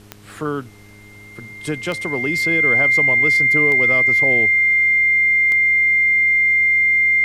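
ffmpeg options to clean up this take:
ffmpeg -i in.wav -af "adeclick=threshold=4,bandreject=frequency=102.9:width_type=h:width=4,bandreject=frequency=205.8:width_type=h:width=4,bandreject=frequency=308.7:width_type=h:width=4,bandreject=frequency=411.6:width_type=h:width=4,bandreject=frequency=2100:width=30,agate=range=-21dB:threshold=-33dB" out.wav

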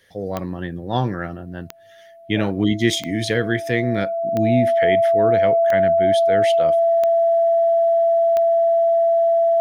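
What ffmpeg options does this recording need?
ffmpeg -i in.wav -af "adeclick=threshold=4,bandreject=frequency=670:width=30" out.wav

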